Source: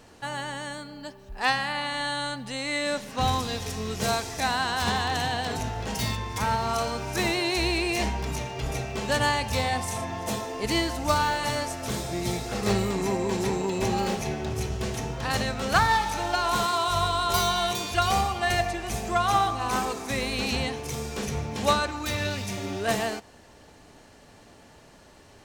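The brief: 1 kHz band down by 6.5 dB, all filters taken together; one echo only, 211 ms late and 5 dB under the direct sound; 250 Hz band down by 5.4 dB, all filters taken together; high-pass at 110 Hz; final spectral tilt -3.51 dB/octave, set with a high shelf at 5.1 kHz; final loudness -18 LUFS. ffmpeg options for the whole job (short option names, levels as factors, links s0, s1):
-af "highpass=110,equalizer=f=250:t=o:g=-7,equalizer=f=1000:t=o:g=-8,highshelf=f=5100:g=-6.5,aecho=1:1:211:0.562,volume=3.98"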